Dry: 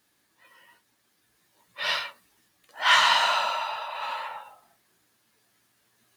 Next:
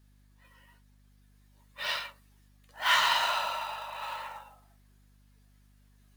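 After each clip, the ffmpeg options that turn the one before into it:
-af "acrusher=bits=4:mode=log:mix=0:aa=0.000001,aeval=exprs='val(0)+0.00178*(sin(2*PI*50*n/s)+sin(2*PI*2*50*n/s)/2+sin(2*PI*3*50*n/s)/3+sin(2*PI*4*50*n/s)/4+sin(2*PI*5*50*n/s)/5)':c=same,volume=-5.5dB"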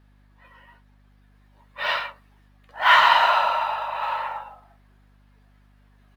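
-af "firequalizer=gain_entry='entry(150,0);entry(730,8);entry(6500,-12)':delay=0.05:min_phase=1,volume=5dB"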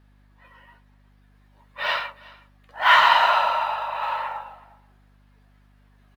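-af "aecho=1:1:367:0.0708"

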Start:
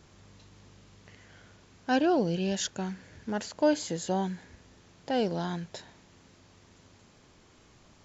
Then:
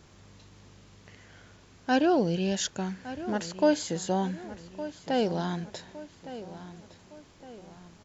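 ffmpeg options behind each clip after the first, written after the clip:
-filter_complex "[0:a]asplit=2[a][b];[b]adelay=1162,lowpass=f=4.3k:p=1,volume=-14dB,asplit=2[c][d];[d]adelay=1162,lowpass=f=4.3k:p=1,volume=0.46,asplit=2[e][f];[f]adelay=1162,lowpass=f=4.3k:p=1,volume=0.46,asplit=2[g][h];[h]adelay=1162,lowpass=f=4.3k:p=1,volume=0.46[i];[a][c][e][g][i]amix=inputs=5:normalize=0,volume=1.5dB"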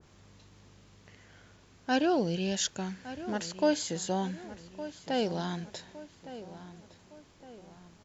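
-af "adynamicequalizer=threshold=0.00631:dfrequency=1900:dqfactor=0.7:tfrequency=1900:tqfactor=0.7:attack=5:release=100:ratio=0.375:range=2:mode=boostabove:tftype=highshelf,volume=-3.5dB"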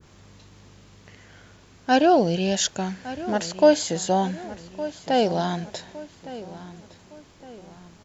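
-af "adynamicequalizer=threshold=0.00501:dfrequency=680:dqfactor=2.3:tfrequency=680:tqfactor=2.3:attack=5:release=100:ratio=0.375:range=3.5:mode=boostabove:tftype=bell,volume=7dB"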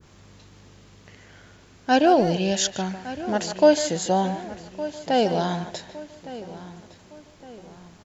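-filter_complex "[0:a]asplit=2[a][b];[b]adelay=150,highpass=300,lowpass=3.4k,asoftclip=type=hard:threshold=-14dB,volume=-10dB[c];[a][c]amix=inputs=2:normalize=0"

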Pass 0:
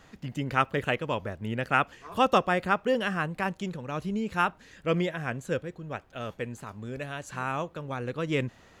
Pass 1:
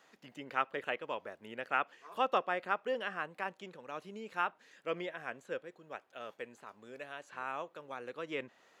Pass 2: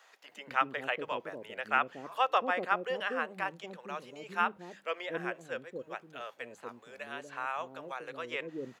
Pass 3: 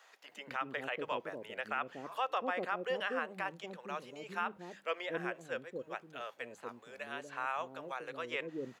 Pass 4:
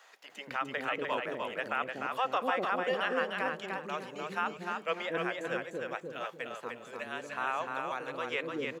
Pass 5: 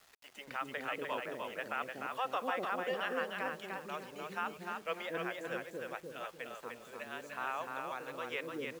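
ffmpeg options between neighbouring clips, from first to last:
-filter_complex "[0:a]highpass=400,acrossover=split=4000[a][b];[b]acompressor=threshold=-59dB:ratio=6[c];[a][c]amix=inputs=2:normalize=0,volume=-7.5dB"
-filter_complex "[0:a]bandreject=f=50:t=h:w=6,bandreject=f=100:t=h:w=6,bandreject=f=150:t=h:w=6,bandreject=f=200:t=h:w=6,acrossover=split=480[a][b];[a]adelay=240[c];[c][b]amix=inputs=2:normalize=0,volume=4.5dB"
-af "alimiter=limit=-22.5dB:level=0:latency=1:release=84,volume=-1dB"
-af "aecho=1:1:300|600|900|1200:0.631|0.164|0.0427|0.0111,volume=3.5dB"
-af "acrusher=bits=8:mix=0:aa=0.000001,volume=-5dB"

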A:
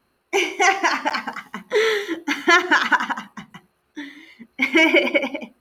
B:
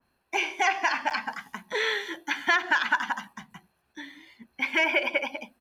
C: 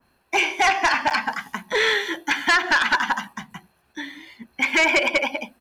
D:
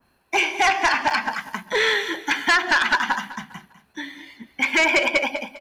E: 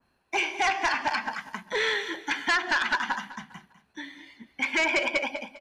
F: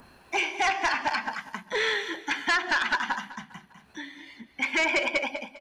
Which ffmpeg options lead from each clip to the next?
-filter_complex "[0:a]aecho=1:1:1.2:0.36,acrossover=split=450|1800|3700[a][b][c][d];[a]acompressor=threshold=-38dB:ratio=4[e];[b]acompressor=threshold=-18dB:ratio=4[f];[c]acompressor=threshold=-23dB:ratio=4[g];[d]acompressor=threshold=-46dB:ratio=4[h];[e][f][g][h]amix=inputs=4:normalize=0,adynamicequalizer=threshold=0.0282:dfrequency=2400:dqfactor=0.7:tfrequency=2400:tqfactor=0.7:attack=5:release=100:ratio=0.375:range=2.5:mode=boostabove:tftype=highshelf,volume=-5.5dB"
-af "aeval=exprs='0.316*sin(PI/2*2.24*val(0)/0.316)':c=same,volume=-2.5dB"
-af "aecho=1:1:201|402|603:0.178|0.0605|0.0206"
-af "lowpass=9.4k,volume=-6.5dB"
-af "acompressor=mode=upward:threshold=-39dB:ratio=2.5"

